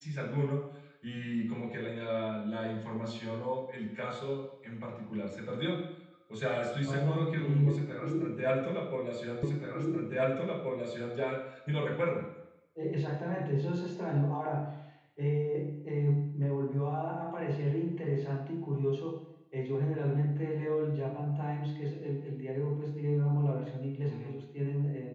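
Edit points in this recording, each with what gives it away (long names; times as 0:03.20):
0:09.43: the same again, the last 1.73 s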